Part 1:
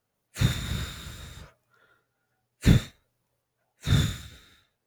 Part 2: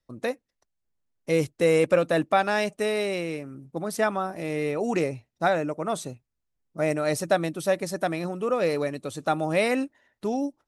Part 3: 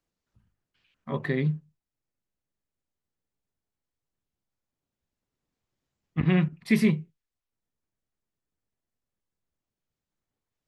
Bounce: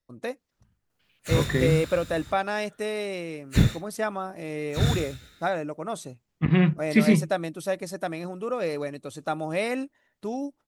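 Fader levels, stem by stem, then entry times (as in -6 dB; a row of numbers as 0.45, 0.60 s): -0.5, -4.0, +2.5 dB; 0.90, 0.00, 0.25 s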